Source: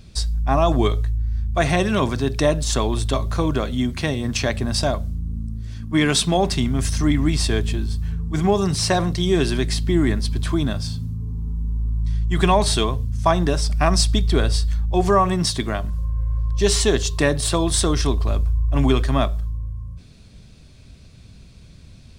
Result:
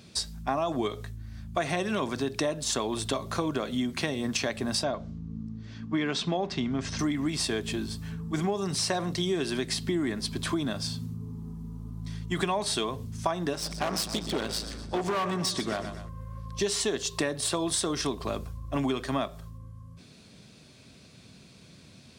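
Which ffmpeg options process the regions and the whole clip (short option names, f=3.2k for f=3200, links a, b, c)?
-filter_complex "[0:a]asettb=1/sr,asplit=3[a][b][c];[a]atrim=end=4.834[d];[b]atrim=start=4.83:end=6.99,asetpts=PTS-STARTPTS,afade=t=in:d=0.004:c=qsin,afade=t=out:st=2.156:d=0.004:c=qsin,lowpass=f=6.6k:w=0.5412,lowpass=f=6.6k:w=1.3066,highshelf=f=4.6k:g=-9[e];[c]atrim=start=6.986[f];[d][e]acrossfade=d=0.004:c1=hsin:c2=qsin[g];[g][f]acrossfade=d=0.004:c1=qsin:c2=hsin,asettb=1/sr,asplit=3[h][i][j];[h]atrim=end=13.534[k];[i]atrim=start=13.53:end=16.09,asetpts=PTS-STARTPTS,afade=t=in:d=0.004:c=qsin,afade=t=out:st=2.556:d=0.004:c=qsin,lowpass=9.5k,aecho=1:1:124|248|372|496:0.211|0.0888|0.0373|0.0157,atrim=end_sample=112896,asoftclip=type=hard:threshold=-18dB[l];[j]atrim=start=16.086[m];[k][l]acrossfade=d=0.004:c1=hsin:c2=qsin[n];[n][m]acrossfade=d=0.004:c1=qsin:c2=hsin,highpass=190,acompressor=threshold=-26dB:ratio=5"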